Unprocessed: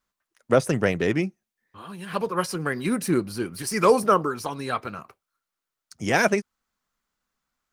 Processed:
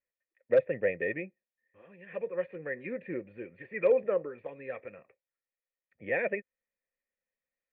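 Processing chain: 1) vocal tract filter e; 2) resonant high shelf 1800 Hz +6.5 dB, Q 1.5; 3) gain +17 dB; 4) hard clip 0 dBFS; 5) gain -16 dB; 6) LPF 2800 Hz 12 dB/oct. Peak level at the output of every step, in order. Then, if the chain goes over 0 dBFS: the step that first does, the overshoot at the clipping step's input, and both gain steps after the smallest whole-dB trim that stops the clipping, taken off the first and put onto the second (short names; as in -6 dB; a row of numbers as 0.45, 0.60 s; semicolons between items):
-12.5, -13.0, +4.0, 0.0, -16.0, -15.5 dBFS; step 3, 4.0 dB; step 3 +13 dB, step 5 -12 dB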